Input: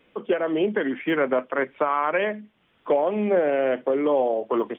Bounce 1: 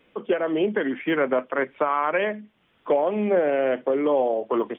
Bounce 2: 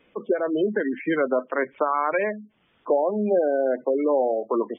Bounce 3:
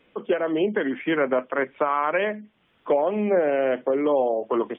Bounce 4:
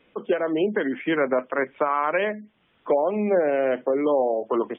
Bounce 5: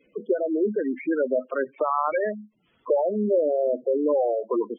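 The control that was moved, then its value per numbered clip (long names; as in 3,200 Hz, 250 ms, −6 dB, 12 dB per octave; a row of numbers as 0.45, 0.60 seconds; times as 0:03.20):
gate on every frequency bin, under each frame's peak: −60, −20, −45, −35, −10 decibels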